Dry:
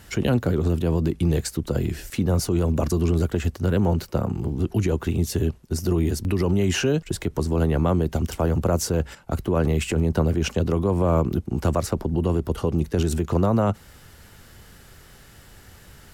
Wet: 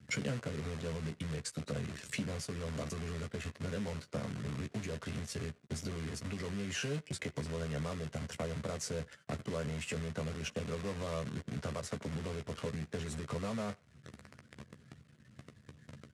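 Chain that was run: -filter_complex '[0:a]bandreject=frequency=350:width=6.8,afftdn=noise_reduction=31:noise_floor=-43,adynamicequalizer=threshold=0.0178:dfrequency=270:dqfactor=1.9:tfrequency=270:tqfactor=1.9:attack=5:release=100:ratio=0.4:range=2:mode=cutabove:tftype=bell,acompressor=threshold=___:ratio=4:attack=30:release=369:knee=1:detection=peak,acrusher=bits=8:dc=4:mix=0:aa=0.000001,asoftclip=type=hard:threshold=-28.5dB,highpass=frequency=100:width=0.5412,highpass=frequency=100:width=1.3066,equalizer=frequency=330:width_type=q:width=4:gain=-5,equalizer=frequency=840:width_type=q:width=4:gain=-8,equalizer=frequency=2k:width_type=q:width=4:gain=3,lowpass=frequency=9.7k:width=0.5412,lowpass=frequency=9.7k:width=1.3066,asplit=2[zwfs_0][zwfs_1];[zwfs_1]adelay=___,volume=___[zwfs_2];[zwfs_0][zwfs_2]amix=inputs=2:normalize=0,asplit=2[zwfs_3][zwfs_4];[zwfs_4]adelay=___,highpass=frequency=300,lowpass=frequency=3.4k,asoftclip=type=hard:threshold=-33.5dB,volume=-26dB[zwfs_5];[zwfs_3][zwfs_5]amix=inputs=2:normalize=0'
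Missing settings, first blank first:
-38dB, 14, -6.5dB, 90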